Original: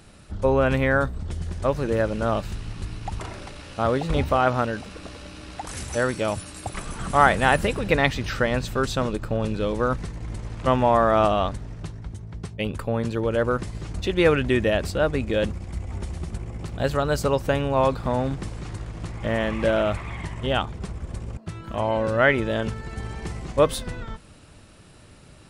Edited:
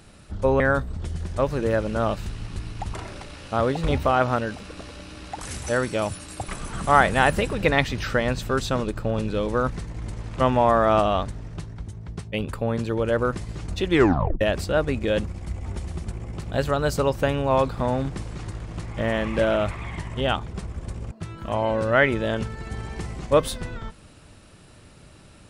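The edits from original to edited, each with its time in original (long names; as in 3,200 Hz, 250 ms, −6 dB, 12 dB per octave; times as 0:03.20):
0:00.60–0:00.86: remove
0:14.17: tape stop 0.50 s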